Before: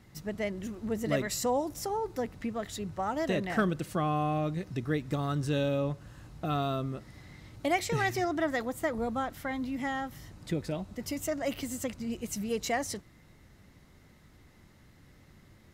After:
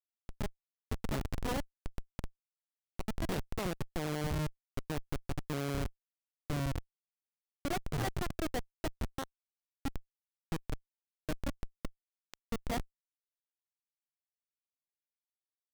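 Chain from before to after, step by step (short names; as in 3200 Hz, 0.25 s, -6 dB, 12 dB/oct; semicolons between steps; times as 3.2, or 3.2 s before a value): 3.31–4.3 ripple EQ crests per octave 0.73, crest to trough 10 dB; added harmonics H 2 -17 dB, 3 -11 dB, 7 -24 dB, 8 -31 dB, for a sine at -15 dBFS; Schmitt trigger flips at -40.5 dBFS; gain +10.5 dB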